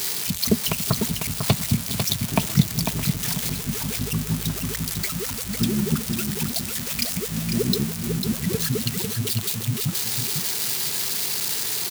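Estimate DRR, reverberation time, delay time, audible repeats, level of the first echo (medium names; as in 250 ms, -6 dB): no reverb, no reverb, 498 ms, 2, -6.5 dB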